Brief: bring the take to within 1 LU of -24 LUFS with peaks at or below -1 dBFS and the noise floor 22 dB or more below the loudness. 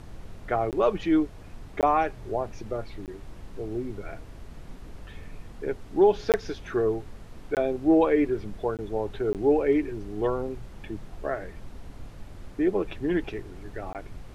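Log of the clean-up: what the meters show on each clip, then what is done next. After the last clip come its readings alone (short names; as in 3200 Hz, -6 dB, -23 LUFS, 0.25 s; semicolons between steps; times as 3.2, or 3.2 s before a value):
dropouts 8; longest dropout 18 ms; noise floor -45 dBFS; noise floor target -49 dBFS; loudness -27.0 LUFS; peak -9.5 dBFS; loudness target -24.0 LUFS
-> interpolate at 0.71/1.81/3.06/6.32/7.55/8.77/9.33/13.93, 18 ms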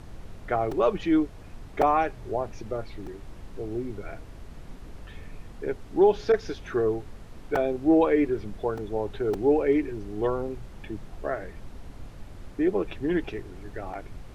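dropouts 0; noise floor -45 dBFS; noise floor target -49 dBFS
-> noise print and reduce 6 dB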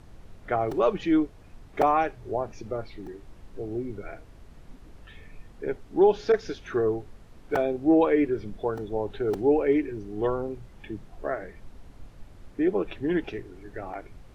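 noise floor -50 dBFS; loudness -27.0 LUFS; peak -9.5 dBFS; loudness target -24.0 LUFS
-> gain +3 dB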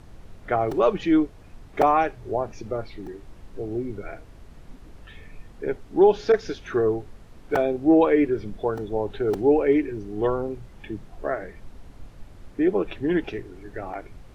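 loudness -24.0 LUFS; peak -6.5 dBFS; noise floor -47 dBFS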